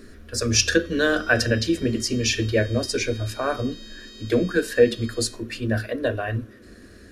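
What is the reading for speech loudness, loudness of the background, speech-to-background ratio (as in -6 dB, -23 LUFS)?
-23.0 LUFS, -43.0 LUFS, 20.0 dB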